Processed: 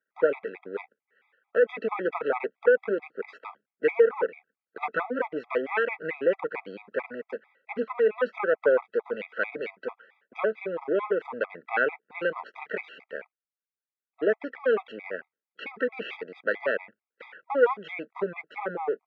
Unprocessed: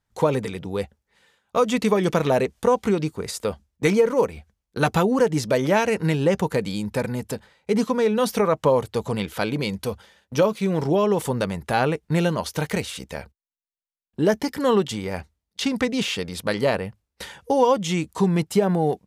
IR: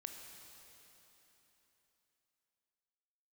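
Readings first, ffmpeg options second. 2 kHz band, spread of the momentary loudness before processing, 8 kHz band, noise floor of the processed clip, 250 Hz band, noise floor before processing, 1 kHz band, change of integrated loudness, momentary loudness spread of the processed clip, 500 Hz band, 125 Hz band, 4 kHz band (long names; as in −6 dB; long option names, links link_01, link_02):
0.0 dB, 11 LU, below −40 dB, below −85 dBFS, −15.0 dB, −83 dBFS, −8.0 dB, −5.5 dB, 15 LU, −4.0 dB, below −25 dB, below −15 dB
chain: -af "aeval=exprs='if(lt(val(0),0),0.251*val(0),val(0))':channel_layout=same,highpass=frequency=290:width=0.5412,highpass=frequency=290:width=1.3066,equalizer=frequency=310:width_type=q:width=4:gain=-5,equalizer=frequency=470:width_type=q:width=4:gain=5,equalizer=frequency=680:width_type=q:width=4:gain=-4,equalizer=frequency=970:width_type=q:width=4:gain=-5,equalizer=frequency=1500:width_type=q:width=4:gain=8,equalizer=frequency=2300:width_type=q:width=4:gain=4,lowpass=frequency=2400:width=0.5412,lowpass=frequency=2400:width=1.3066,afftfilt=real='re*gt(sin(2*PI*4.5*pts/sr)*(1-2*mod(floor(b*sr/1024/650),2)),0)':imag='im*gt(sin(2*PI*4.5*pts/sr)*(1-2*mod(floor(b*sr/1024/650),2)),0)':win_size=1024:overlap=0.75"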